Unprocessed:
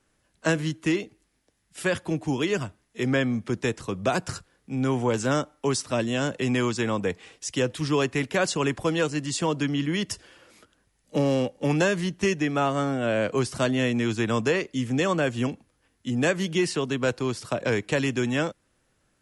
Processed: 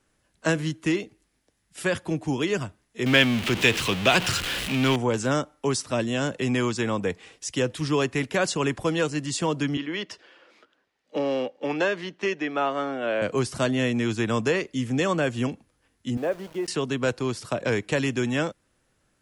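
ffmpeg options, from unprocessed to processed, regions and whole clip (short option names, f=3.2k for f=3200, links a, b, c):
-filter_complex "[0:a]asettb=1/sr,asplit=3[a][b][c];[a]atrim=end=3.064[d];[b]atrim=start=3.06:end=4.96,asetpts=PTS-STARTPTS,afade=t=in:d=0.004:c=qsin,afade=t=out:st=1.896:d=0.004:c=qsin,aeval=exprs='val(0)+0.5*0.0355*sgn(val(0))':c=same,equalizer=f=2.9k:t=o:w=1.2:g=15[e];[c]atrim=start=4.956[f];[d][e]acrossfade=d=0.004:c1=hsin:c2=qsin[g];[g][f]acrossfade=d=0.004:c1=qsin:c2=hsin,asettb=1/sr,asplit=3[h][i][j];[h]atrim=end=9.774[k];[i]atrim=start=9.77:end=13.22,asetpts=PTS-STARTPTS,afade=t=in:d=0.004:c=qsin,afade=t=out:st=3.446:d=0.004:c=qsin,highpass=f=140:p=1,acrossover=split=260 4900:gain=0.158 1 0.0631[l][m][n];[l][m][n]amix=inputs=3:normalize=0[o];[j]atrim=start=13.216[p];[k][o]acrossfade=d=0.004:c1=hsin:c2=qsin[q];[q][p]acrossfade=d=0.004:c1=qsin:c2=hsin,asettb=1/sr,asplit=3[r][s][t];[r]atrim=end=16.174[u];[s]atrim=start=16.17:end=16.68,asetpts=PTS-STARTPTS,afade=t=in:d=0.004:c=qsin,afade=t=out:st=0.506:d=0.004:c=qsin,bandpass=f=590:t=q:w=1.4,aeval=exprs='val(0)*gte(abs(val(0)),0.00794)':c=same[v];[t]atrim=start=16.676[w];[u][v]acrossfade=d=0.004:c1=hsin:c2=qsin[x];[x][w]acrossfade=d=0.004:c1=qsin:c2=hsin"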